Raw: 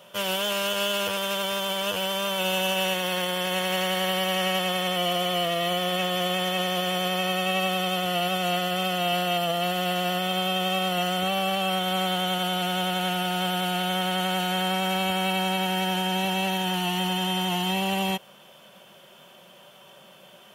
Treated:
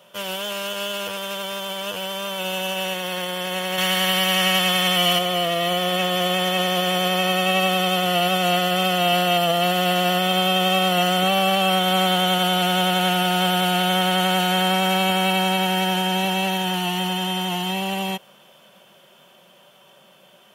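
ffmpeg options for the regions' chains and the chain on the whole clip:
-filter_complex "[0:a]asettb=1/sr,asplit=3[a][b][c];[a]atrim=end=3.784[d];[b]atrim=start=3.78:end=5.19,asetpts=PTS-STARTPTS,afade=t=in:d=0.004:c=qsin,afade=t=out:st=1.406:d=0.004:c=qsin,equalizer=f=450:w=0.61:g=-8,acontrast=75[e];[c]atrim=start=5.186[f];[d][e]acrossfade=d=0.004:c1=hsin:c2=qsin[g];[g][f]acrossfade=d=0.004:c1=qsin:c2=hsin,highpass=98,dynaudnorm=f=580:g=17:m=8.5dB,volume=-1.5dB"

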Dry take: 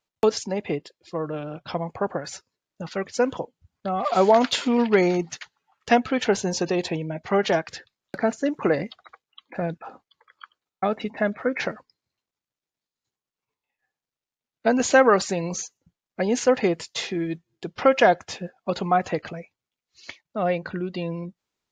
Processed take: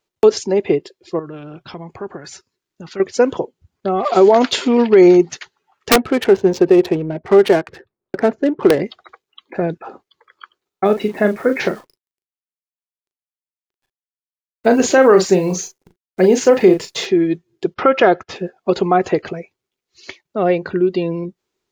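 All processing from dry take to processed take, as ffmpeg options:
-filter_complex "[0:a]asettb=1/sr,asplit=3[a][b][c];[a]atrim=end=1.194[d];[b]atrim=start=1.19:end=3,asetpts=PTS-STARTPTS,afade=t=in:d=0.004:c=qsin,afade=t=out:st=1.806:d=0.004:c=qsin,equalizer=f=530:t=o:w=1.2:g=-8,acompressor=threshold=-40dB:ratio=2:attack=3.2:release=140:knee=1:detection=peak[e];[c]atrim=start=2.996[f];[d][e]acrossfade=d=0.004:c1=hsin:c2=qsin[g];[g][f]acrossfade=d=0.004:c1=qsin:c2=hsin,asettb=1/sr,asplit=3[h][i][j];[h]atrim=end=5.904[k];[i]atrim=start=5.9:end=8.8,asetpts=PTS-STARTPTS,afade=t=in:d=0.004:c=qsin,afade=t=out:st=2.896:d=0.004:c=qsin,adynamicsmooth=sensitivity=3.5:basefreq=950,aeval=exprs='(mod(2.99*val(0)+1,2)-1)/2.99':c=same[l];[j]atrim=start=8.796[m];[k][l]acrossfade=d=0.004:c1=hsin:c2=qsin[n];[n][m]acrossfade=d=0.004:c1=qsin:c2=hsin,asettb=1/sr,asplit=3[o][p][q];[o]atrim=end=10.854[r];[p]atrim=start=10.85:end=17.06,asetpts=PTS-STARTPTS,afade=t=in:d=0.004:c=qsin,afade=t=out:st=6.206:d=0.004:c=qsin,equalizer=f=180:w=5:g=5,acrusher=bits=9:dc=4:mix=0:aa=0.000001,asplit=2[s][t];[t]adelay=38,volume=-8dB[u];[s][u]amix=inputs=2:normalize=0,atrim=end_sample=273861[v];[q]atrim=start=17.056[w];[r][v]acrossfade=d=0.004:c1=hsin:c2=qsin[x];[x][w]acrossfade=d=0.004:c1=qsin:c2=hsin,asettb=1/sr,asplit=3[y][z][aa];[y]atrim=end=17.744[ab];[z]atrim=start=17.74:end=18.36,asetpts=PTS-STARTPTS,afade=t=in:d=0.004:c=qsin,afade=t=out:st=0.616:d=0.004:c=qsin,lowpass=4k,agate=range=-18dB:threshold=-44dB:ratio=16:release=100:detection=peak,equalizer=f=1.3k:w=6.8:g=9.5[ac];[aa]atrim=start=18.356[ad];[ab][ac]acrossfade=d=0.004:c1=hsin:c2=qsin[ae];[ae][ad]acrossfade=d=0.004:c1=qsin:c2=hsin,equalizer=f=380:t=o:w=0.42:g=12.5,alimiter=level_in=6dB:limit=-1dB:release=50:level=0:latency=1,volume=-1dB"

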